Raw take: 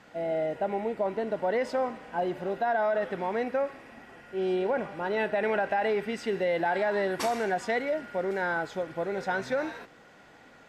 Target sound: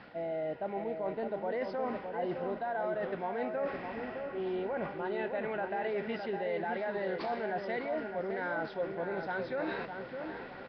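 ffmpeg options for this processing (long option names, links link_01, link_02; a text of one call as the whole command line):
ffmpeg -i in.wav -filter_complex "[0:a]areverse,acompressor=threshold=-40dB:ratio=5,areverse,asplit=2[link_01][link_02];[link_02]adelay=611,lowpass=frequency=1400:poles=1,volume=-5dB,asplit=2[link_03][link_04];[link_04]adelay=611,lowpass=frequency=1400:poles=1,volume=0.43,asplit=2[link_05][link_06];[link_06]adelay=611,lowpass=frequency=1400:poles=1,volume=0.43,asplit=2[link_07][link_08];[link_08]adelay=611,lowpass=frequency=1400:poles=1,volume=0.43,asplit=2[link_09][link_10];[link_10]adelay=611,lowpass=frequency=1400:poles=1,volume=0.43[link_11];[link_01][link_03][link_05][link_07][link_09][link_11]amix=inputs=6:normalize=0,volume=5.5dB" -ar 11025 -c:a nellymoser out.flv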